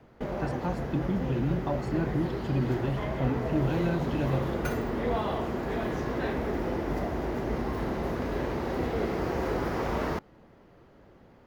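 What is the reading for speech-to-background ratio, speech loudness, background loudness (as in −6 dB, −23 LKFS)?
0.5 dB, −31.5 LKFS, −32.0 LKFS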